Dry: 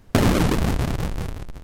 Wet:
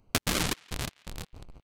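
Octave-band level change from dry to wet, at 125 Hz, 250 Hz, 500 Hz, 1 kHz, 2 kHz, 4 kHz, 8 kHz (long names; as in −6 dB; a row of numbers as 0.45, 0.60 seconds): −15.5, −15.0, −13.5, −10.0, −5.0, −0.5, +0.5 decibels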